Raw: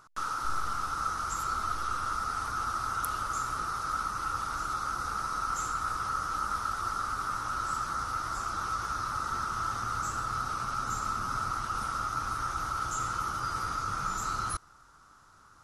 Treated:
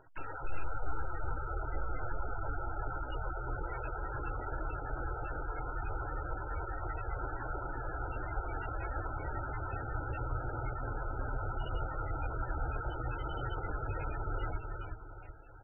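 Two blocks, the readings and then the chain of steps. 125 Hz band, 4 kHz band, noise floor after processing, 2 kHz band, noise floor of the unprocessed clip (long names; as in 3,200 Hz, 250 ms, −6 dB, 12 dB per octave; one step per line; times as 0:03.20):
+4.0 dB, below −15 dB, −45 dBFS, −5.5 dB, −58 dBFS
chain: brickwall limiter −26 dBFS, peak gain reduction 11 dB
auto-filter notch saw down 9.8 Hz 230–2,800 Hz
soft clipping −26.5 dBFS, distortion −24 dB
phaser with its sweep stopped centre 490 Hz, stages 4
on a send: repeating echo 374 ms, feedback 42%, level −4.5 dB
on the sum: level +8.5 dB
MP3 8 kbit/s 22,050 Hz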